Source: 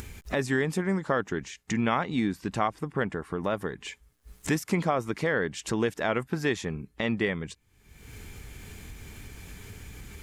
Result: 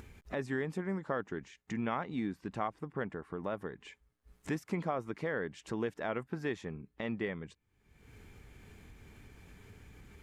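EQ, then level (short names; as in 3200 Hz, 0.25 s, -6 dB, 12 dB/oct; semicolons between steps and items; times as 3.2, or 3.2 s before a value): low shelf 110 Hz -5 dB; high shelf 3300 Hz -12 dB; -7.5 dB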